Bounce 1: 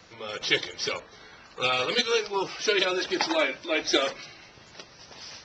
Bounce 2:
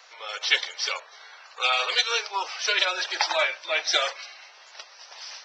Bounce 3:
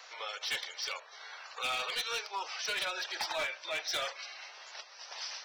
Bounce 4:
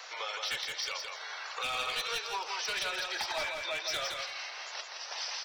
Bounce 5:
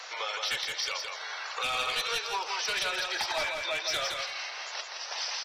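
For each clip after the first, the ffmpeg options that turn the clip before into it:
-af "highpass=f=650:w=0.5412,highpass=f=650:w=1.3066,volume=1.41"
-af "volume=10.6,asoftclip=hard,volume=0.0944,alimiter=level_in=1.88:limit=0.0631:level=0:latency=1:release=363,volume=0.531"
-filter_complex "[0:a]acrossover=split=150[s0][s1];[s1]acompressor=threshold=0.00891:ratio=2.5[s2];[s0][s2]amix=inputs=2:normalize=0,asplit=2[s3][s4];[s4]aecho=0:1:167|334|501:0.596|0.101|0.0172[s5];[s3][s5]amix=inputs=2:normalize=0,volume=1.88"
-af "aresample=32000,aresample=44100,volume=1.5"

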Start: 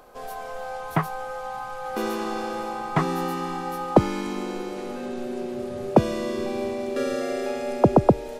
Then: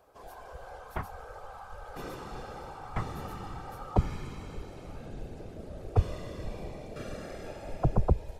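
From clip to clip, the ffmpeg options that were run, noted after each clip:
-af "afftfilt=real='hypot(re,im)*cos(2*PI*random(0))':imag='hypot(re,im)*sin(2*PI*random(1))':win_size=512:overlap=0.75,asubboost=boost=9.5:cutoff=92,volume=0.473"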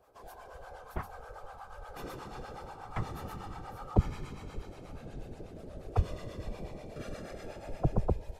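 -filter_complex "[0:a]acrossover=split=590[s0][s1];[s0]aeval=exprs='val(0)*(1-0.7/2+0.7/2*cos(2*PI*8.3*n/s))':c=same[s2];[s1]aeval=exprs='val(0)*(1-0.7/2-0.7/2*cos(2*PI*8.3*n/s))':c=same[s3];[s2][s3]amix=inputs=2:normalize=0,volume=1.12"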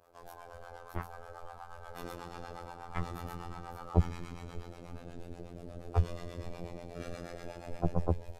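-af "afftfilt=real='hypot(re,im)*cos(PI*b)':imag='0':win_size=2048:overlap=0.75,volume=1.41"

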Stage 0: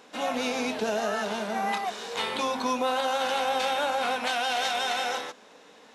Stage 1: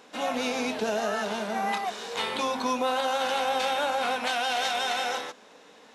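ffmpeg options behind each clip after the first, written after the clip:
-af anull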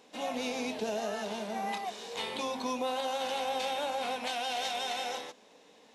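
-af "equalizer=f=1400:t=o:w=0.68:g=-8.5,volume=0.562"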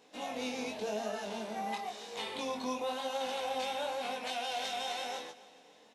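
-af "flanger=delay=18.5:depth=5:speed=0.95,aecho=1:1:281|562|843|1124:0.106|0.0519|0.0254|0.0125"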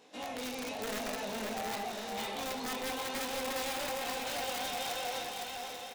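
-af "aeval=exprs='(mod(29.9*val(0)+1,2)-1)/29.9':c=same,aeval=exprs='0.0335*(cos(1*acos(clip(val(0)/0.0335,-1,1)))-cos(1*PI/2))+0.00473*(cos(5*acos(clip(val(0)/0.0335,-1,1)))-cos(5*PI/2))':c=same,aecho=1:1:510|841.5|1057|1197|1288:0.631|0.398|0.251|0.158|0.1,volume=0.75"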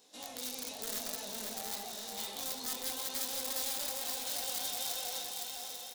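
-af "aexciter=amount=3.1:drive=7.4:freq=3500,volume=0.376"

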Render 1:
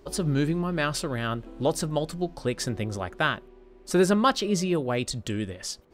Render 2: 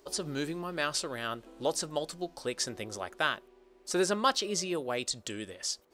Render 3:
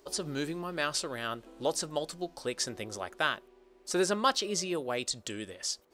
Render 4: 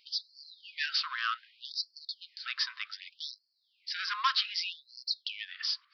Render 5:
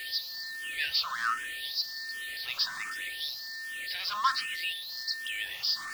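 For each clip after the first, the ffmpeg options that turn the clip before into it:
-filter_complex "[0:a]acrossover=split=8500[s0][s1];[s1]acompressor=threshold=0.00178:ratio=4:attack=1:release=60[s2];[s0][s2]amix=inputs=2:normalize=0,bass=f=250:g=-13,treble=f=4000:g=8,volume=0.596"
-af anull
-af "aresample=11025,asoftclip=type=tanh:threshold=0.0335,aresample=44100,afftfilt=real='re*gte(b*sr/1024,950*pow(4200/950,0.5+0.5*sin(2*PI*0.65*pts/sr)))':imag='im*gte(b*sr/1024,950*pow(4200/950,0.5+0.5*sin(2*PI*0.65*pts/sr)))':win_size=1024:overlap=0.75,volume=2.66"
-filter_complex "[0:a]aeval=exprs='val(0)+0.5*0.0158*sgn(val(0))':c=same,aeval=exprs='val(0)+0.0126*sin(2*PI*1800*n/s)':c=same,asplit=2[s0][s1];[s1]afreqshift=1.3[s2];[s0][s2]amix=inputs=2:normalize=1,volume=1.19"

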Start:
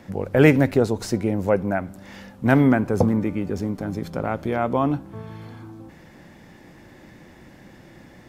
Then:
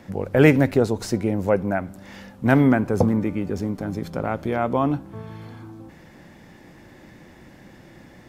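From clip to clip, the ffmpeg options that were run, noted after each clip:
-af anull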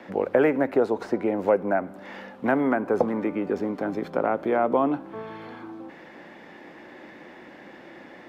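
-filter_complex "[0:a]acrossover=split=590|1700|7800[s0][s1][s2][s3];[s0]acompressor=threshold=0.0708:ratio=4[s4];[s1]acompressor=threshold=0.0316:ratio=4[s5];[s2]acompressor=threshold=0.00282:ratio=4[s6];[s3]acompressor=threshold=0.00224:ratio=4[s7];[s4][s5][s6][s7]amix=inputs=4:normalize=0,acrossover=split=250 3800:gain=0.0631 1 0.141[s8][s9][s10];[s8][s9][s10]amix=inputs=3:normalize=0,volume=1.88"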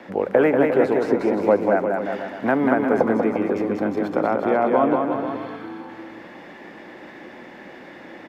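-af "aecho=1:1:190|351.5|488.8|605.5|704.6:0.631|0.398|0.251|0.158|0.1,volume=1.33"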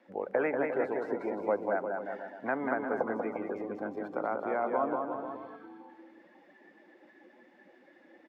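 -af "afftdn=nr=14:nf=-33,lowshelf=f=400:g=-11.5,volume=0.398"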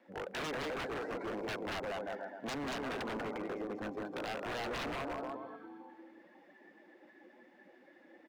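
-af "aeval=exprs='0.0251*(abs(mod(val(0)/0.0251+3,4)-2)-1)':c=same,volume=0.841"

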